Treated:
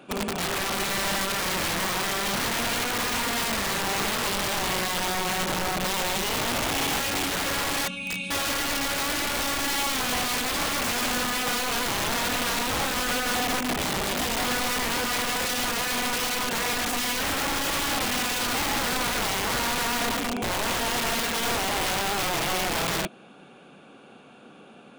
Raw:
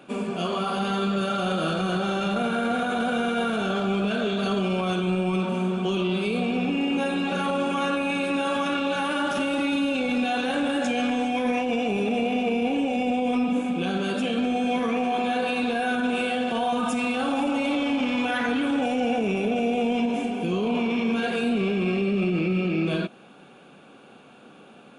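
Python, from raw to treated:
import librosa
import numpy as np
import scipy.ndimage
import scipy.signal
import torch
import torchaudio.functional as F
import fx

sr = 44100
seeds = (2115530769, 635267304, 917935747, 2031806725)

y = fx.spec_box(x, sr, start_s=7.88, length_s=0.43, low_hz=250.0, high_hz=2200.0, gain_db=-18)
y = (np.mod(10.0 ** (22.0 / 20.0) * y + 1.0, 2.0) - 1.0) / 10.0 ** (22.0 / 20.0)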